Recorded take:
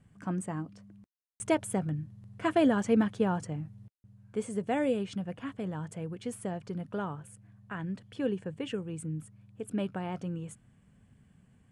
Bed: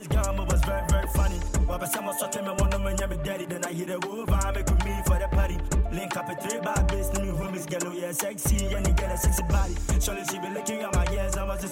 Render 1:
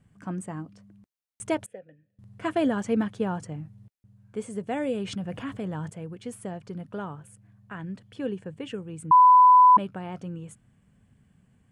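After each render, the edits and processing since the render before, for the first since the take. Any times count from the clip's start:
0:01.66–0:02.19: formant filter e
0:04.92–0:05.90: envelope flattener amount 50%
0:09.11–0:09.77: beep over 1,000 Hz −11 dBFS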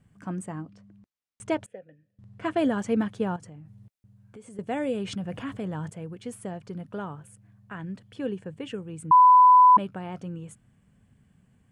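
0:00.52–0:02.58: high-frequency loss of the air 54 metres
0:03.36–0:04.59: downward compressor 5 to 1, threshold −43 dBFS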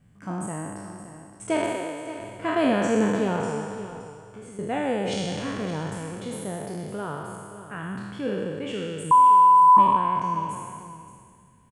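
peak hold with a decay on every bin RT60 2.01 s
single-tap delay 571 ms −13 dB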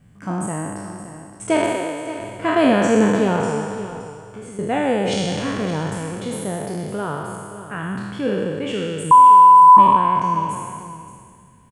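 level +6.5 dB
brickwall limiter −2 dBFS, peak gain reduction 1.5 dB

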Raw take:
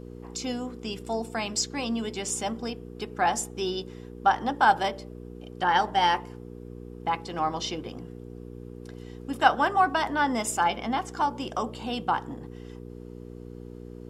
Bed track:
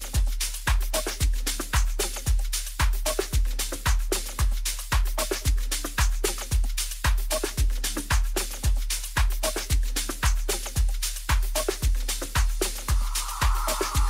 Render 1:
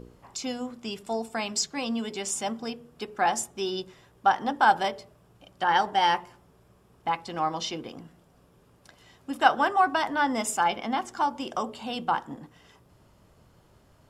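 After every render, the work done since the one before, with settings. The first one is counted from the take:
hum removal 60 Hz, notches 8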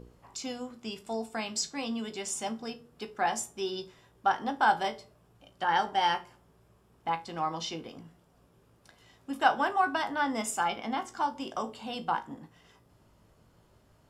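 tuned comb filter 55 Hz, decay 0.23 s, harmonics all, mix 70%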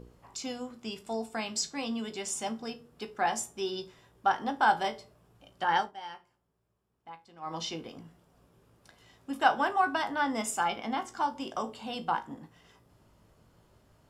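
0:05.77–0:07.56: duck −16 dB, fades 0.15 s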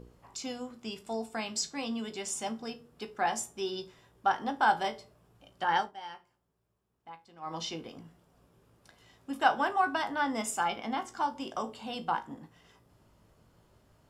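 level −1 dB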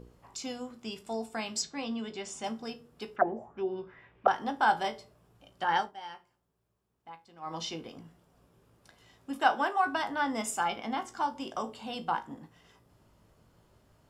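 0:01.62–0:02.44: high-frequency loss of the air 82 metres
0:03.16–0:04.28: envelope-controlled low-pass 370–2,700 Hz down, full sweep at −26 dBFS
0:09.38–0:09.84: high-pass filter 110 Hz → 440 Hz 24 dB per octave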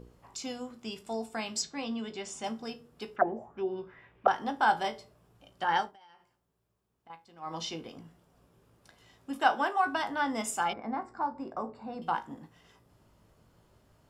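0:05.92–0:07.10: downward compressor 16 to 1, threshold −53 dBFS
0:10.73–0:12.02: moving average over 14 samples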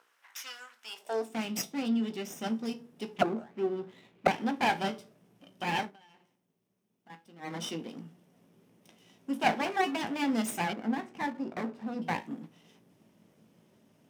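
lower of the sound and its delayed copy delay 0.34 ms
high-pass filter sweep 1,400 Hz → 200 Hz, 0:00.82–0:01.38

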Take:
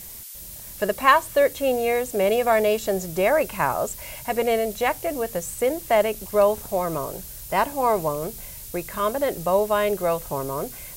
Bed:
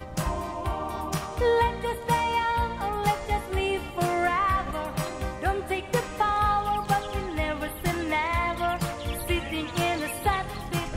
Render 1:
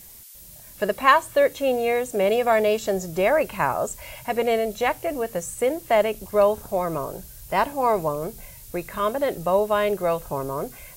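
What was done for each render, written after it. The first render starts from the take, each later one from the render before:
noise reduction from a noise print 6 dB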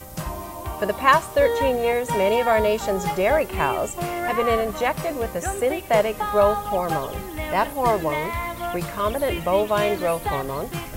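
mix in bed −2 dB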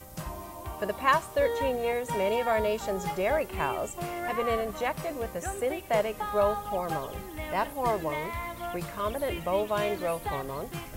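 level −7.5 dB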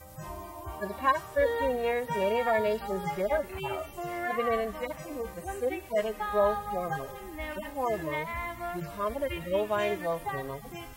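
harmonic-percussive split with one part muted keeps harmonic
dynamic equaliser 1,800 Hz, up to +5 dB, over −52 dBFS, Q 3.5

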